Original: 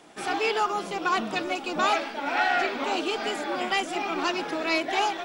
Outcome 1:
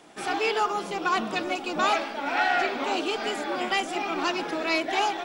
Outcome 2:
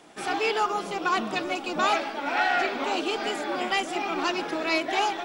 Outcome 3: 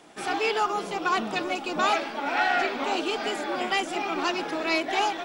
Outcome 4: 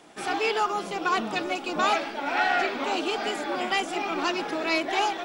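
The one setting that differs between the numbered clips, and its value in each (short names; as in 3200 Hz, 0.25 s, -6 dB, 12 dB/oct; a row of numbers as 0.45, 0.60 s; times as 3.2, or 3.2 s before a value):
dark delay, time: 93, 152, 331, 674 ms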